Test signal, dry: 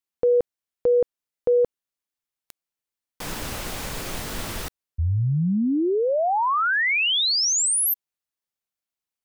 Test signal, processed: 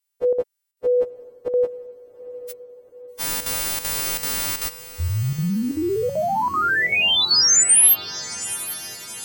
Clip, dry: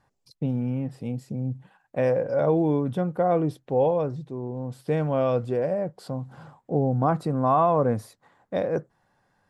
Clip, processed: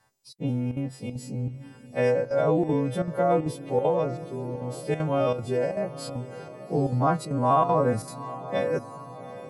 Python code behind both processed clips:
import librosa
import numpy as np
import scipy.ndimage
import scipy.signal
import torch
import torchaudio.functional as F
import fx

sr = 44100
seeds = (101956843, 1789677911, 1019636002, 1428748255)

y = fx.freq_snap(x, sr, grid_st=2)
y = fx.chopper(y, sr, hz=2.6, depth_pct=65, duty_pct=85)
y = fx.echo_diffused(y, sr, ms=810, feedback_pct=57, wet_db=-15.0)